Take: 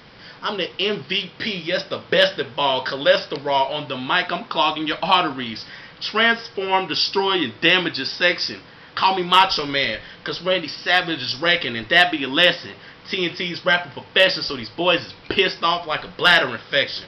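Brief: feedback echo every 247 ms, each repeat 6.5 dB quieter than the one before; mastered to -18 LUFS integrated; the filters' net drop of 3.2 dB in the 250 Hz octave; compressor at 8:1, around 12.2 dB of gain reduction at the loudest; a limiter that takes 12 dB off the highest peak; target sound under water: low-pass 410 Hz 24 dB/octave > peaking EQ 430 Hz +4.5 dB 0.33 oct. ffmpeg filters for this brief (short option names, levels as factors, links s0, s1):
-af "equalizer=f=250:t=o:g=-5,acompressor=threshold=0.0794:ratio=8,alimiter=limit=0.106:level=0:latency=1,lowpass=f=410:w=0.5412,lowpass=f=410:w=1.3066,equalizer=f=430:t=o:w=0.33:g=4.5,aecho=1:1:247|494|741|988|1235|1482:0.473|0.222|0.105|0.0491|0.0231|0.0109,volume=9.44"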